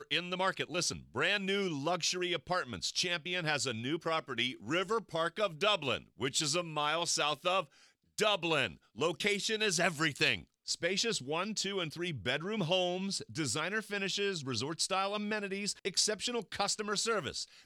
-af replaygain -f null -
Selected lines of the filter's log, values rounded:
track_gain = +12.2 dB
track_peak = 0.129